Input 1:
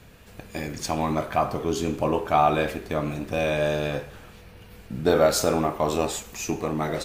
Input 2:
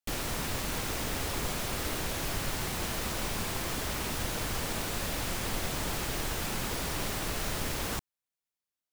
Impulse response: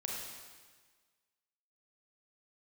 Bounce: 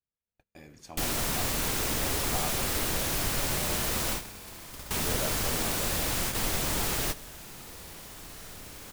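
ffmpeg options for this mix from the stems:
-filter_complex "[0:a]volume=0.119,asplit=2[s0][s1];[1:a]highshelf=f=5400:g=6,adelay=900,volume=1.26,asplit=2[s2][s3];[s3]volume=0.141[s4];[s1]apad=whole_len=433440[s5];[s2][s5]sidechaingate=range=0.0224:threshold=0.001:ratio=16:detection=peak[s6];[s4]aecho=0:1:63|126|189|252|315|378|441|504|567:1|0.58|0.336|0.195|0.113|0.0656|0.0381|0.0221|0.0128[s7];[s0][s6][s7]amix=inputs=3:normalize=0,agate=range=0.0251:threshold=0.00178:ratio=16:detection=peak"

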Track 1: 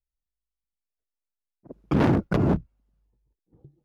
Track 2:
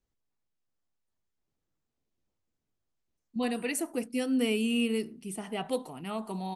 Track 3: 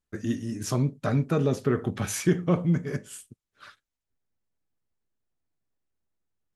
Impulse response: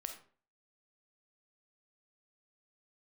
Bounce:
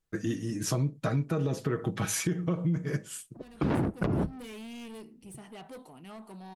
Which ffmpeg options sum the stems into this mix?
-filter_complex "[0:a]highshelf=f=5600:g=-9,adelay=1700,volume=0.794,asplit=2[s0][s1];[s1]volume=0.133[s2];[1:a]asoftclip=type=tanh:threshold=0.0188,volume=0.422,asplit=2[s3][s4];[s4]volume=0.15[s5];[2:a]aecho=1:1:6.2:0.52,alimiter=limit=0.168:level=0:latency=1:release=133,volume=1.06,asplit=2[s6][s7];[s7]apad=whole_len=288926[s8];[s3][s8]sidechaincompress=threshold=0.00891:ratio=8:attack=6.2:release=770[s9];[3:a]atrim=start_sample=2205[s10];[s2][s5]amix=inputs=2:normalize=0[s11];[s11][s10]afir=irnorm=-1:irlink=0[s12];[s0][s9][s6][s12]amix=inputs=4:normalize=0,acompressor=threshold=0.0501:ratio=3"

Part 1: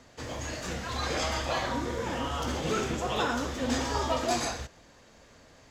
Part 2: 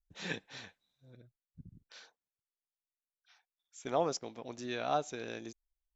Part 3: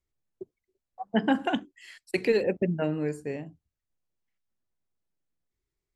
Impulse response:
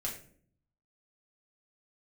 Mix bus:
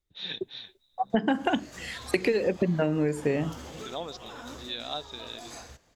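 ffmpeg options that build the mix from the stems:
-filter_complex "[0:a]highshelf=f=10000:g=10.5,alimiter=limit=0.0891:level=0:latency=1:release=100,adelay=1100,volume=0.316[s0];[1:a]lowpass=f=3700:t=q:w=11,volume=0.501,asplit=2[s1][s2];[2:a]dynaudnorm=f=110:g=9:m=5.96,volume=0.891[s3];[s2]apad=whole_len=300170[s4];[s0][s4]sidechaincompress=threshold=0.0141:ratio=8:attack=6.4:release=626[s5];[s5][s1][s3]amix=inputs=3:normalize=0,acompressor=threshold=0.0891:ratio=12"

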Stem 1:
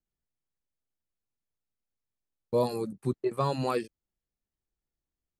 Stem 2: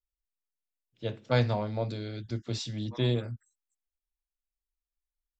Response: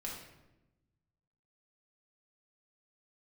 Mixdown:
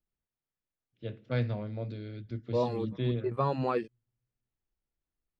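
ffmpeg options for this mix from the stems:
-filter_complex "[0:a]volume=0.944[s0];[1:a]equalizer=f=880:t=o:w=0.98:g=-11.5,volume=0.668,asplit=3[s1][s2][s3];[s2]volume=0.0708[s4];[s3]apad=whole_len=237931[s5];[s0][s5]sidechaincompress=threshold=0.02:ratio=8:attack=16:release=351[s6];[2:a]atrim=start_sample=2205[s7];[s4][s7]afir=irnorm=-1:irlink=0[s8];[s6][s1][s8]amix=inputs=3:normalize=0,lowpass=2600"

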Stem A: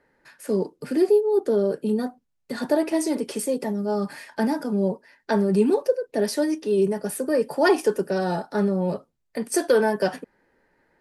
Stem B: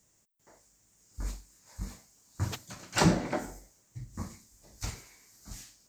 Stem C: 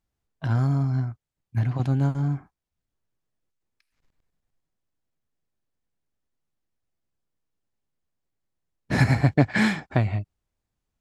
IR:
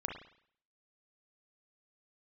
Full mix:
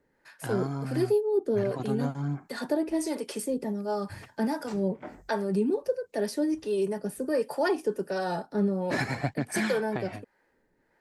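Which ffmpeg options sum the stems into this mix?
-filter_complex "[0:a]acrossover=split=460[s0][s1];[s0]aeval=exprs='val(0)*(1-0.7/2+0.7/2*cos(2*PI*1.4*n/s))':c=same[s2];[s1]aeval=exprs='val(0)*(1-0.7/2-0.7/2*cos(2*PI*1.4*n/s))':c=same[s3];[s2][s3]amix=inputs=2:normalize=0,volume=0.841,asplit=2[s4][s5];[1:a]afwtdn=0.00708,adelay=1700,volume=0.422[s6];[2:a]highpass=200,aphaser=in_gain=1:out_gain=1:delay=3.1:decay=0.37:speed=0.84:type=triangular,volume=0.75[s7];[s5]apad=whole_len=338785[s8];[s6][s8]sidechaincompress=threshold=0.00501:ratio=8:attack=16:release=112[s9];[s4][s9][s7]amix=inputs=3:normalize=0,alimiter=limit=0.141:level=0:latency=1:release=497"

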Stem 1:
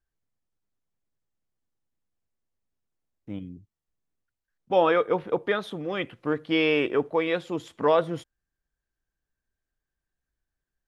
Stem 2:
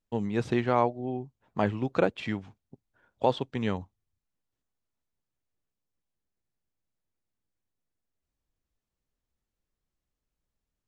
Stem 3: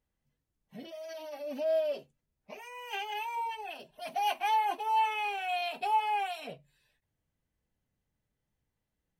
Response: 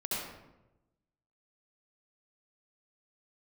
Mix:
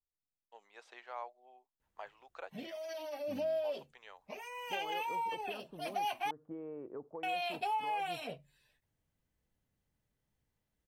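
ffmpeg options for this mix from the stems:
-filter_complex "[0:a]lowpass=f=1100:w=0.5412,lowpass=f=1100:w=1.3066,acompressor=threshold=0.0501:ratio=5,volume=0.168[s0];[1:a]highpass=f=630:w=0.5412,highpass=f=630:w=1.3066,adelay=400,volume=0.15[s1];[2:a]adelay=1800,volume=1,asplit=3[s2][s3][s4];[s2]atrim=end=6.31,asetpts=PTS-STARTPTS,afade=t=out:st=6.306:d=0.004:c=hsin[s5];[s3]atrim=start=6.31:end=7.23,asetpts=PTS-STARTPTS,volume=0[s6];[s4]atrim=start=7.23,asetpts=PTS-STARTPTS,afade=t=in:d=0.004:c=hsin[s7];[s5][s6][s7]concat=n=3:v=0:a=1[s8];[s0][s1][s8]amix=inputs=3:normalize=0,acompressor=threshold=0.0224:ratio=4"

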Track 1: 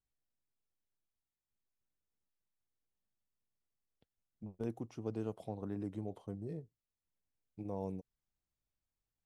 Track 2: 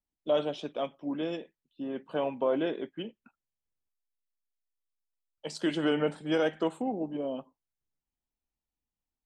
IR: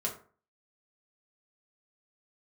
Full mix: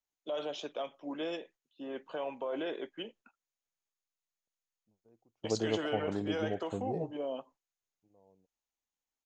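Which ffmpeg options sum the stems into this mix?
-filter_complex "[0:a]lowpass=6300,equalizer=f=620:w=0.66:g=9,adelay=450,volume=1.19[s0];[1:a]acrossover=split=360 4800:gain=0.224 1 0.126[s1][s2][s3];[s1][s2][s3]amix=inputs=3:normalize=0,alimiter=level_in=1.68:limit=0.0631:level=0:latency=1:release=40,volume=0.596,lowpass=f=6700:t=q:w=9.2,volume=1,asplit=2[s4][s5];[s5]apad=whole_len=427881[s6];[s0][s6]sidechaingate=range=0.0224:threshold=0.00112:ratio=16:detection=peak[s7];[s7][s4]amix=inputs=2:normalize=0"

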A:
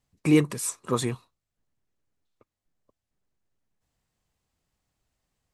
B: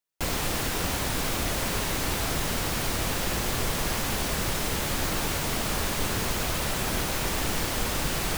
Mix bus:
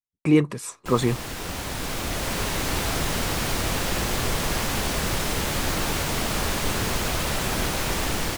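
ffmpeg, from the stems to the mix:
-filter_complex "[0:a]lowpass=f=3100:p=1,agate=range=0.0224:threshold=0.00316:ratio=3:detection=peak,volume=1.19[s0];[1:a]highshelf=f=12000:g=-5,adelay=650,volume=0.282[s1];[s0][s1]amix=inputs=2:normalize=0,dynaudnorm=f=400:g=5:m=5.01"

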